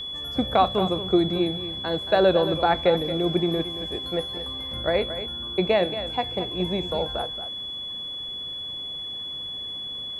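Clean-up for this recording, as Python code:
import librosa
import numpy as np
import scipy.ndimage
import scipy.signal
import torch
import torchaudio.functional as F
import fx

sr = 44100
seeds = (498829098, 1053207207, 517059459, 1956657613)

y = fx.notch(x, sr, hz=3400.0, q=30.0)
y = fx.fix_echo_inverse(y, sr, delay_ms=226, level_db=-11.5)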